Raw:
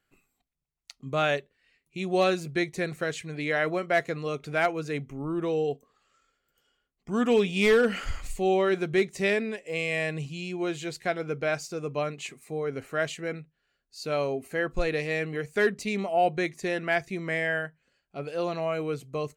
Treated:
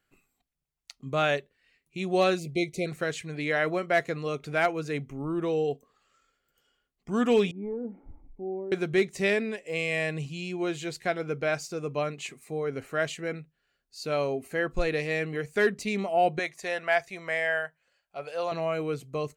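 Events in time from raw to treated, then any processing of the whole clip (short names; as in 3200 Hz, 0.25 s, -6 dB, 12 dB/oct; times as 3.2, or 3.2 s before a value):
2.39–2.86 spectral delete 730–2000 Hz
7.51–8.72 vocal tract filter u
16.39–18.52 resonant low shelf 440 Hz -10.5 dB, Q 1.5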